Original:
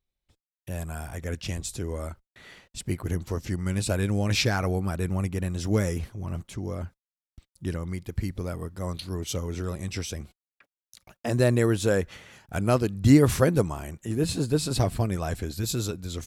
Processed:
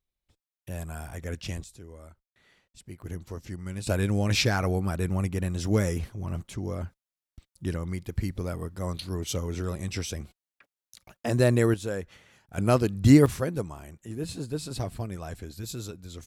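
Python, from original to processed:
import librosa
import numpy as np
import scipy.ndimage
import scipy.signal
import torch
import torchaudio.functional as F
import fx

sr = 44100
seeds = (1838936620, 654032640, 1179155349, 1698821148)

y = fx.gain(x, sr, db=fx.steps((0.0, -2.5), (1.64, -14.0), (3.02, -8.0), (3.87, 0.0), (11.74, -8.5), (12.58, 0.5), (13.26, -8.0)))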